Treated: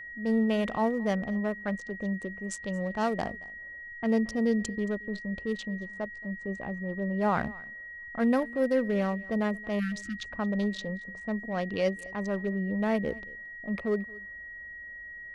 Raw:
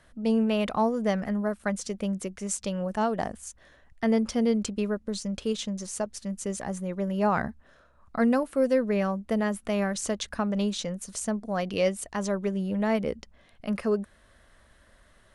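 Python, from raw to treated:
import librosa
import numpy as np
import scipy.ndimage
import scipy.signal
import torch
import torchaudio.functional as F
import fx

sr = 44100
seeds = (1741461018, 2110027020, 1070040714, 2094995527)

p1 = fx.wiener(x, sr, points=25)
p2 = fx.env_lowpass(p1, sr, base_hz=950.0, full_db=-22.5)
p3 = fx.high_shelf(p2, sr, hz=2800.0, db=8.5, at=(1.88, 3.22))
p4 = fx.spec_erase(p3, sr, start_s=9.79, length_s=0.44, low_hz=340.0, high_hz=1200.0)
p5 = fx.transient(p4, sr, attack_db=-4, sustain_db=0)
p6 = p5 + 10.0 ** (-39.0 / 20.0) * np.sin(2.0 * np.pi * 1900.0 * np.arange(len(p5)) / sr)
p7 = p6 + fx.echo_single(p6, sr, ms=225, db=-22.5, dry=0)
y = p7 * 10.0 ** (-1.0 / 20.0)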